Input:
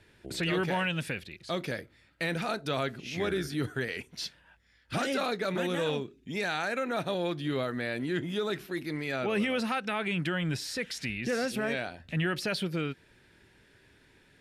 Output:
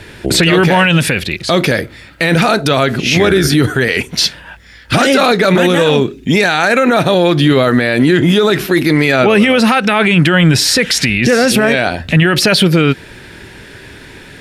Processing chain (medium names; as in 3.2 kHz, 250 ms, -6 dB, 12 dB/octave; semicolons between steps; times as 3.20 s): loudness maximiser +27.5 dB; trim -1 dB